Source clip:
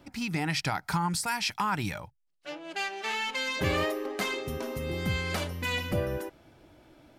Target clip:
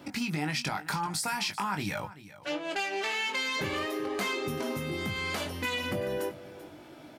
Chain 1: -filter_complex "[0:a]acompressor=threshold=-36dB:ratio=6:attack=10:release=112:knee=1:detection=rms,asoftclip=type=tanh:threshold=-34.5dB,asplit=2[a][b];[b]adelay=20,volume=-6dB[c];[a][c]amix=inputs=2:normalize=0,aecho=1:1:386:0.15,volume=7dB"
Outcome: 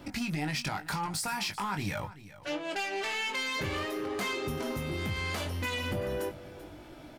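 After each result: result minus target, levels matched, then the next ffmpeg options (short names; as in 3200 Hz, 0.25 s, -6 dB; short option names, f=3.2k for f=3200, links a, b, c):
soft clip: distortion +11 dB; 125 Hz band +3.5 dB
-filter_complex "[0:a]acompressor=threshold=-36dB:ratio=6:attack=10:release=112:knee=1:detection=rms,asoftclip=type=tanh:threshold=-26.5dB,asplit=2[a][b];[b]adelay=20,volume=-6dB[c];[a][c]amix=inputs=2:normalize=0,aecho=1:1:386:0.15,volume=7dB"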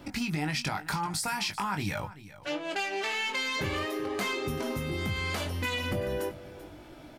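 125 Hz band +3.0 dB
-filter_complex "[0:a]acompressor=threshold=-36dB:ratio=6:attack=10:release=112:knee=1:detection=rms,highpass=130,asoftclip=type=tanh:threshold=-26.5dB,asplit=2[a][b];[b]adelay=20,volume=-6dB[c];[a][c]amix=inputs=2:normalize=0,aecho=1:1:386:0.15,volume=7dB"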